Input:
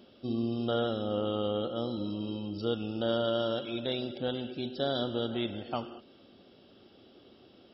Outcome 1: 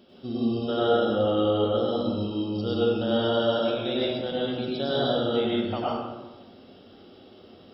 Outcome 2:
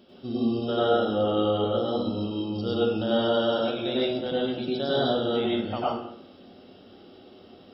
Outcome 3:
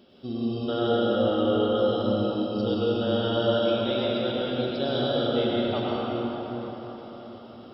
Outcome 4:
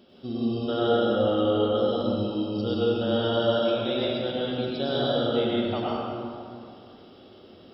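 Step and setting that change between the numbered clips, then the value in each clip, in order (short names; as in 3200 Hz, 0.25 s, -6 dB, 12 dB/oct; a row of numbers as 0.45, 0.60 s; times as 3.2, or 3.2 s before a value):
plate-style reverb, RT60: 1.1, 0.51, 5.2, 2.4 s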